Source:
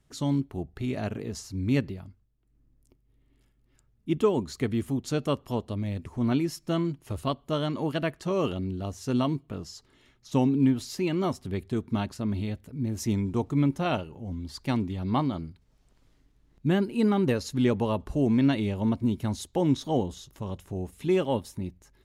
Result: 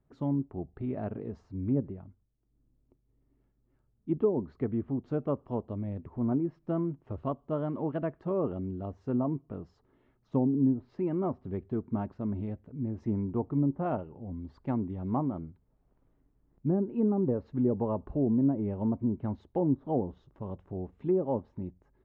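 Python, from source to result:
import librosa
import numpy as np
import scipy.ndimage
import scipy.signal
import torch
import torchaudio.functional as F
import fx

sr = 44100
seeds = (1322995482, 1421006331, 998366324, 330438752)

y = scipy.signal.sosfilt(scipy.signal.butter(2, 1000.0, 'lowpass', fs=sr, output='sos'), x)
y = fx.env_lowpass_down(y, sr, base_hz=680.0, full_db=-19.5)
y = fx.low_shelf(y, sr, hz=130.0, db=-5.0)
y = y * 10.0 ** (-2.0 / 20.0)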